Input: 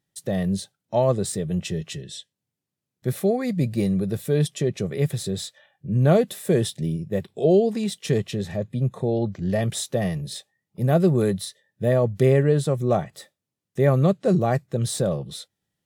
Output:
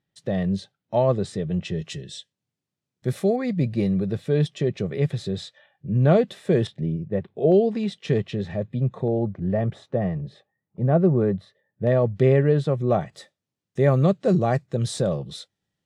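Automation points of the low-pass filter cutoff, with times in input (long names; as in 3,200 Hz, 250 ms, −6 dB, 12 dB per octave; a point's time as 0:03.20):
3,800 Hz
from 0:01.79 7,400 Hz
from 0:03.36 4,000 Hz
from 0:06.67 1,900 Hz
from 0:07.52 3,400 Hz
from 0:09.08 1,400 Hz
from 0:11.87 3,500 Hz
from 0:13.01 6,900 Hz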